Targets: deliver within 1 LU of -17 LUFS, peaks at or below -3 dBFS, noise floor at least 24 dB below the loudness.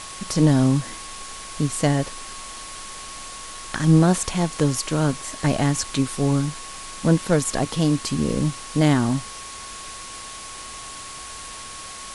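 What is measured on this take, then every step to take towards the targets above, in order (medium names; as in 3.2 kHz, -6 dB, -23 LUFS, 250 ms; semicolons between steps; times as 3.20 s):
steady tone 1.1 kHz; tone level -40 dBFS; noise floor -37 dBFS; noise floor target -46 dBFS; loudness -21.5 LUFS; peak level -5.0 dBFS; loudness target -17.0 LUFS
-> band-stop 1.1 kHz, Q 30; noise print and reduce 9 dB; trim +4.5 dB; peak limiter -3 dBFS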